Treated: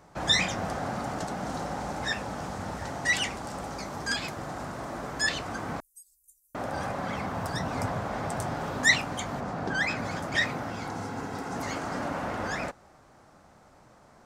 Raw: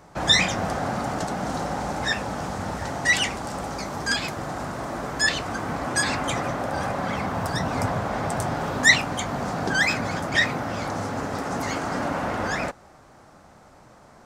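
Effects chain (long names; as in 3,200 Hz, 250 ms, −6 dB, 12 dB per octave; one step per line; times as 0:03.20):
0:05.80–0:06.55: inverse Chebyshev band-stop filter 110–2,500 Hz, stop band 80 dB
0:09.39–0:09.97: high-shelf EQ 3,500 Hz → 6,100 Hz −10.5 dB
0:10.70–0:11.56: notch comb filter 600 Hz
level −5.5 dB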